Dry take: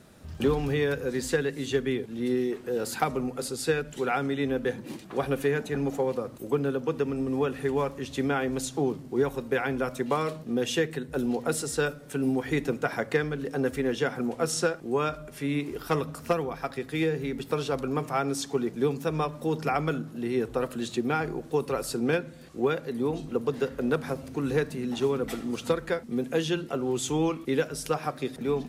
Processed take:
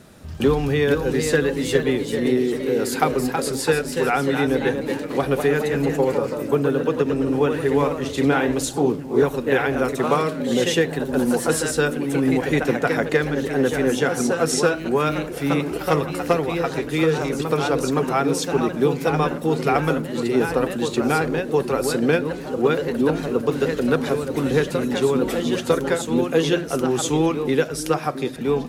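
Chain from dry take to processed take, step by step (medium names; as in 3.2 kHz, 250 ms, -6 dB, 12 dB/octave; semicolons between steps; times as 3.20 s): repeats whose band climbs or falls 671 ms, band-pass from 280 Hz, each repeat 1.4 oct, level -10.5 dB; ever faster or slower copies 492 ms, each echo +1 st, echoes 3, each echo -6 dB; trim +6.5 dB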